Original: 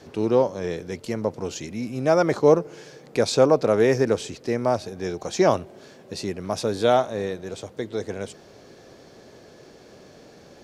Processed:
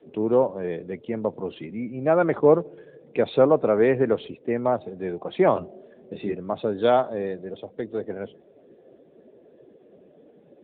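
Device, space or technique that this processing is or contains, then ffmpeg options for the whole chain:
mobile call with aggressive noise cancelling: -filter_complex "[0:a]asettb=1/sr,asplit=3[link_01][link_02][link_03];[link_01]atrim=end=5.544[link_04];[link_02]atrim=start=5.54:end=6.35,asetpts=PTS-STARTPTS,afade=type=in:duration=0.004:curve=qsin,afade=type=out:start_time=0.806:duration=0.004:curve=qsin,asplit=2[link_05][link_06];[link_06]adelay=24,volume=-3dB[link_07];[link_05][link_07]amix=inputs=2:normalize=0,atrim=end_sample=35721[link_08];[link_03]atrim=start=6.346[link_09];[link_04][link_08]acrossfade=duration=0.004:curve1=hsin:curve2=qsin[link_10];[link_10][link_09]acrossfade=duration=0.004:curve1=qsin:curve2=hsin,highpass=130,afftdn=noise_reduction=14:noise_floor=-41" -ar 8000 -c:a libopencore_amrnb -b:a 10200

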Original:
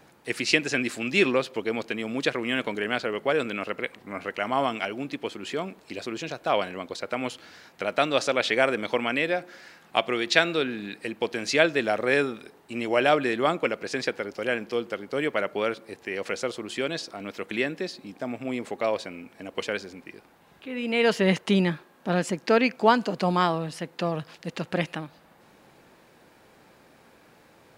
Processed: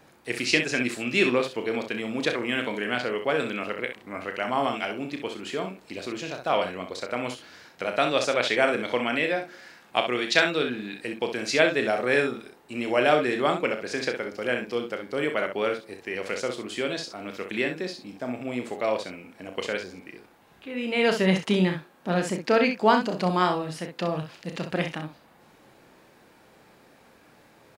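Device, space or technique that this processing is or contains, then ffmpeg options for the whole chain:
slapback doubling: -filter_complex "[0:a]asplit=3[link_01][link_02][link_03];[link_02]adelay=33,volume=-8dB[link_04];[link_03]adelay=64,volume=-8dB[link_05];[link_01][link_04][link_05]amix=inputs=3:normalize=0,volume=-1dB"

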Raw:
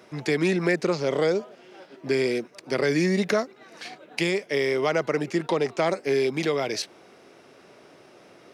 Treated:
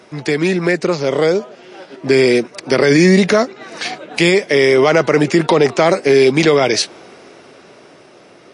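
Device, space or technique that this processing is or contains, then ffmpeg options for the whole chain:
low-bitrate web radio: -af "dynaudnorm=framelen=450:gausssize=9:maxgain=11dB,alimiter=limit=-10dB:level=0:latency=1:release=21,volume=7.5dB" -ar 24000 -c:a libmp3lame -b:a 40k

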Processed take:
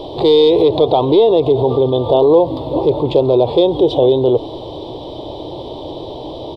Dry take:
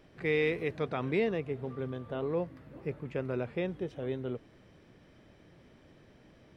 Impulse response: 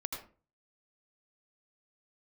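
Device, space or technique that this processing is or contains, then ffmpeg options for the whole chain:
loud club master: -filter_complex "[0:a]acompressor=threshold=-32dB:ratio=2.5,asoftclip=type=hard:threshold=-27.5dB,alimiter=level_in=35.5dB:limit=-1dB:release=50:level=0:latency=1,asettb=1/sr,asplit=3[link_01][link_02][link_03];[link_01]atrim=end=0.644[link_04];[link_02]atrim=start=0.64:end=1.37,asetpts=PTS-STARTPTS,afade=type=in:duration=0.004:curve=qsin,afade=type=out:start_time=0.726:duration=0.004:curve=qsin,acrossover=split=4100[link_05][link_06];[link_06]acompressor=threshold=-39dB:ratio=4:attack=1:release=60[link_07];[link_05][link_07]amix=inputs=2:normalize=0[link_08];[link_03]atrim=start=1.366[link_09];[link_04][link_08]acrossfade=duration=0.004:curve1=hsin:curve2=qsin[link_10];[link_10][link_09]acrossfade=duration=0.004:curve1=qsin:curve2=hsin,firequalizer=gain_entry='entry(130,0);entry(200,-11);entry(310,8);entry(500,9);entry(940,13);entry(1500,-29);entry(2400,-13);entry(3500,15);entry(6000,-10);entry(8600,-8)':delay=0.05:min_phase=1,volume=-10dB"

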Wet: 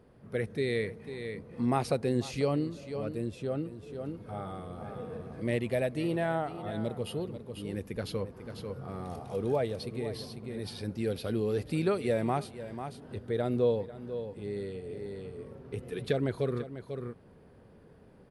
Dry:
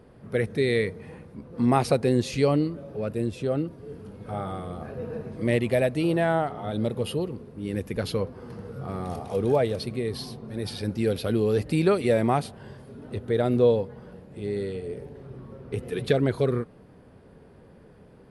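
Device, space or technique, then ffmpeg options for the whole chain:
ducked delay: -filter_complex "[0:a]asplit=3[link_01][link_02][link_03];[link_02]adelay=494,volume=-2.5dB[link_04];[link_03]apad=whole_len=829095[link_05];[link_04][link_05]sidechaincompress=threshold=-32dB:ratio=8:attack=7.4:release=685[link_06];[link_01][link_06]amix=inputs=2:normalize=0,volume=-7dB"

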